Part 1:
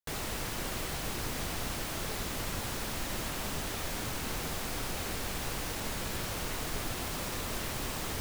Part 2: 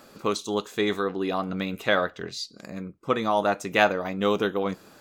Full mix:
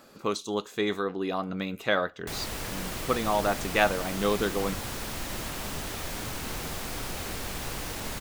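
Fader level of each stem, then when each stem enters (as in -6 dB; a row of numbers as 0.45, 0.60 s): +1.0, -3.0 dB; 2.20, 0.00 s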